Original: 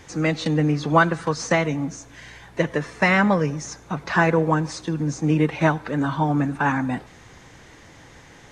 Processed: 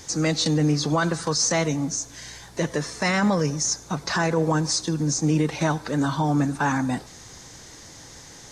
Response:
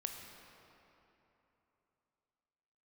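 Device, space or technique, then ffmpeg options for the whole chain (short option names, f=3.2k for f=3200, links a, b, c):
over-bright horn tweeter: -af "highshelf=f=3.6k:t=q:w=1.5:g=10,alimiter=limit=-13dB:level=0:latency=1:release=20"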